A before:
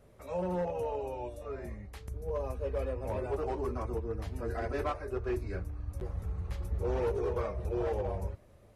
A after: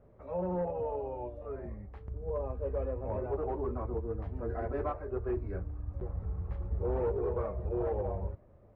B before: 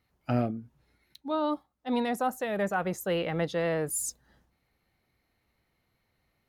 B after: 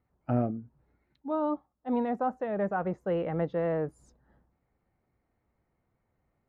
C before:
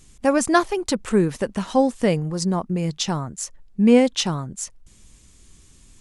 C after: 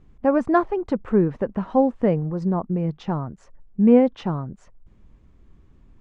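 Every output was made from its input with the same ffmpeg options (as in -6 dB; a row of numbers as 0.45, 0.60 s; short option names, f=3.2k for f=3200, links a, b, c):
-af "lowpass=1.2k"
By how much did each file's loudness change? 0.0, -1.0, -0.5 LU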